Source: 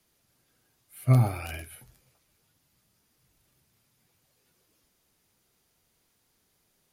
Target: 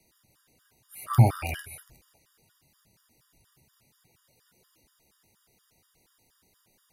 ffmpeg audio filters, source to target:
ffmpeg -i in.wav -af "afftfilt=real='re*gt(sin(2*PI*4.2*pts/sr)*(1-2*mod(floor(b*sr/1024/950),2)),0)':imag='im*gt(sin(2*PI*4.2*pts/sr)*(1-2*mod(floor(b*sr/1024/950),2)),0)':win_size=1024:overlap=0.75,volume=7dB" out.wav

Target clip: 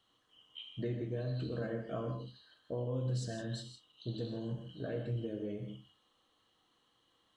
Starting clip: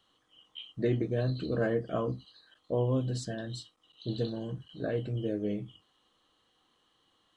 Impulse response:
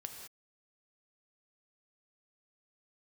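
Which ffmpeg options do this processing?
-filter_complex "[0:a]acompressor=threshold=-32dB:ratio=6[link_01];[1:a]atrim=start_sample=2205,asetrate=52920,aresample=44100[link_02];[link_01][link_02]afir=irnorm=-1:irlink=0,volume=2dB"

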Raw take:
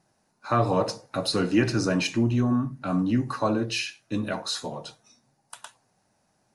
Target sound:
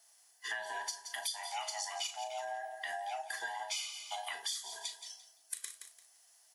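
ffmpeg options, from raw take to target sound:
ffmpeg -i in.wav -filter_complex "[0:a]afftfilt=real='real(if(lt(b,1008),b+24*(1-2*mod(floor(b/24),2)),b),0)':imag='imag(if(lt(b,1008),b+24*(1-2*mod(floor(b/24),2)),b),0)':win_size=2048:overlap=0.75,highpass=480,aderivative,asplit=2[link_01][link_02];[link_02]adelay=36,volume=-9.5dB[link_03];[link_01][link_03]amix=inputs=2:normalize=0,aecho=1:1:171|342|513:0.188|0.0471|0.0118,acompressor=threshold=-49dB:ratio=6,volume=11.5dB" out.wav

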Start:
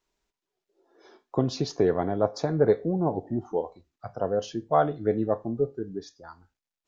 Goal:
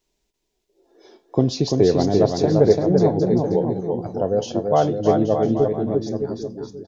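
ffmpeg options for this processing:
ffmpeg -i in.wav -af "equalizer=frequency=1300:width_type=o:width=1.2:gain=-11.5,aecho=1:1:340|612|829.6|1004|1143:0.631|0.398|0.251|0.158|0.1,volume=7.5dB" out.wav

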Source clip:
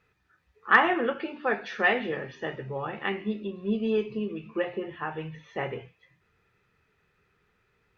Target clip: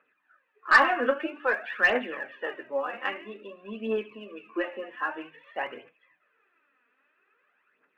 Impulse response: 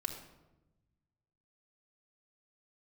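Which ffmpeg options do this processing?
-af "highpass=frequency=270:width=0.5412,highpass=frequency=270:width=1.3066,equalizer=frequency=270:width_type=q:width=4:gain=7,equalizer=frequency=410:width_type=q:width=4:gain=-4,equalizer=frequency=590:width_type=q:width=4:gain=9,equalizer=frequency=1100:width_type=q:width=4:gain=8,equalizer=frequency=1600:width_type=q:width=4:gain=10,equalizer=frequency=2700:width_type=q:width=4:gain=7,lowpass=frequency=3100:width=0.5412,lowpass=frequency=3100:width=1.3066,aeval=exprs='(tanh(1.78*val(0)+0.05)-tanh(0.05))/1.78':channel_layout=same,aphaser=in_gain=1:out_gain=1:delay=4.3:decay=0.59:speed=0.51:type=triangular,volume=-6dB"

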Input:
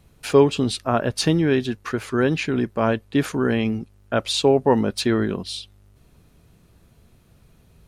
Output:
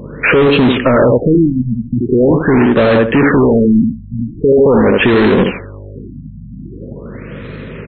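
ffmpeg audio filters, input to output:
ffmpeg -i in.wav -filter_complex "[0:a]equalizer=frequency=125:width_type=o:width=1:gain=10,equalizer=frequency=250:width_type=o:width=1:gain=9,equalizer=frequency=500:width_type=o:width=1:gain=11,equalizer=frequency=1000:width_type=o:width=1:gain=-3,equalizer=frequency=2000:width_type=o:width=1:gain=11,equalizer=frequency=4000:width_type=o:width=1:gain=-9,equalizer=frequency=8000:width_type=o:width=1:gain=10,acompressor=threshold=-10dB:ratio=8,asuperstop=centerf=760:order=4:qfactor=2.3,acrusher=bits=4:mode=log:mix=0:aa=0.000001,aeval=exprs='val(0)+0.00794*(sin(2*PI*50*n/s)+sin(2*PI*2*50*n/s)/2+sin(2*PI*3*50*n/s)/3+sin(2*PI*4*50*n/s)/4+sin(2*PI*5*50*n/s)/5)':channel_layout=same,asplit=2[link_01][link_02];[link_02]adelay=78,lowpass=frequency=1500:poles=1,volume=-9.5dB,asplit=2[link_03][link_04];[link_04]adelay=78,lowpass=frequency=1500:poles=1,volume=0.22,asplit=2[link_05][link_06];[link_06]adelay=78,lowpass=frequency=1500:poles=1,volume=0.22[link_07];[link_03][link_05][link_07]amix=inputs=3:normalize=0[link_08];[link_01][link_08]amix=inputs=2:normalize=0,asplit=2[link_09][link_10];[link_10]highpass=frequency=720:poles=1,volume=27dB,asoftclip=type=tanh:threshold=-4.5dB[link_11];[link_09][link_11]amix=inputs=2:normalize=0,lowpass=frequency=3200:poles=1,volume=-6dB,alimiter=level_in=8.5dB:limit=-1dB:release=50:level=0:latency=1,afftfilt=real='re*lt(b*sr/1024,240*pow(4300/240,0.5+0.5*sin(2*PI*0.43*pts/sr)))':imag='im*lt(b*sr/1024,240*pow(4300/240,0.5+0.5*sin(2*PI*0.43*pts/sr)))':win_size=1024:overlap=0.75,volume=-2.5dB" out.wav

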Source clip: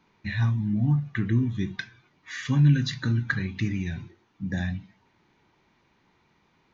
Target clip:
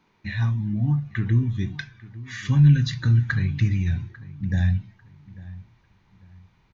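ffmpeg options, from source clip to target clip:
ffmpeg -i in.wav -filter_complex "[0:a]asubboost=boost=7:cutoff=110,asplit=2[link_01][link_02];[link_02]adelay=846,lowpass=frequency=2000:poles=1,volume=-18.5dB,asplit=2[link_03][link_04];[link_04]adelay=846,lowpass=frequency=2000:poles=1,volume=0.3,asplit=2[link_05][link_06];[link_06]adelay=846,lowpass=frequency=2000:poles=1,volume=0.3[link_07];[link_03][link_05][link_07]amix=inputs=3:normalize=0[link_08];[link_01][link_08]amix=inputs=2:normalize=0" out.wav

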